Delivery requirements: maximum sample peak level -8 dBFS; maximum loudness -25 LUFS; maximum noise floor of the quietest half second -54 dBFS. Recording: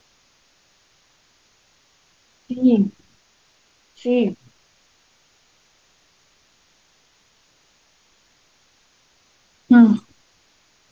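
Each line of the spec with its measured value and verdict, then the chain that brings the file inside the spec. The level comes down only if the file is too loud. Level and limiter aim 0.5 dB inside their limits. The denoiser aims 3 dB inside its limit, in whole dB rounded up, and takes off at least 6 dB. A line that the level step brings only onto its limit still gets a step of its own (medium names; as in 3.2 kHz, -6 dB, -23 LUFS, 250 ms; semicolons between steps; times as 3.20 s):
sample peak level -3.5 dBFS: fail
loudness -17.5 LUFS: fail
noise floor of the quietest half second -60 dBFS: pass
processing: trim -8 dB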